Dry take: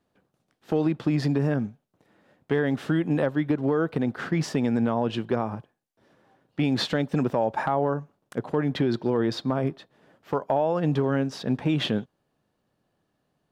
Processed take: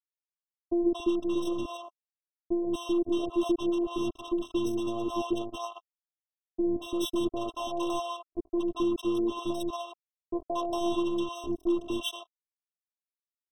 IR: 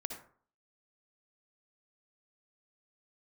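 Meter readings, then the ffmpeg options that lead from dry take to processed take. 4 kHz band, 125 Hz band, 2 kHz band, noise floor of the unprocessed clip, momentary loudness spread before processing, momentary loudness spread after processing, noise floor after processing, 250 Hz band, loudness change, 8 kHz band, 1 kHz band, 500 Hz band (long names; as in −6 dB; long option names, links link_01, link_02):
−3.5 dB, −21.5 dB, −13.0 dB, −76 dBFS, 6 LU, 10 LU, below −85 dBFS, −3.5 dB, −5.0 dB, +0.5 dB, −5.0 dB, −4.5 dB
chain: -filter_complex "[0:a]asplit=2[link_01][link_02];[1:a]atrim=start_sample=2205,asetrate=32634,aresample=44100[link_03];[link_02][link_03]afir=irnorm=-1:irlink=0,volume=-13.5dB[link_04];[link_01][link_04]amix=inputs=2:normalize=0,acrusher=bits=3:mix=0:aa=0.5,afftfilt=real='hypot(re,im)*cos(PI*b)':imag='0':win_size=512:overlap=0.75,acrossover=split=670[link_05][link_06];[link_06]adelay=230[link_07];[link_05][link_07]amix=inputs=2:normalize=0,afftfilt=real='re*eq(mod(floor(b*sr/1024/1300),2),0)':imag='im*eq(mod(floor(b*sr/1024/1300),2),0)':win_size=1024:overlap=0.75,volume=-1dB"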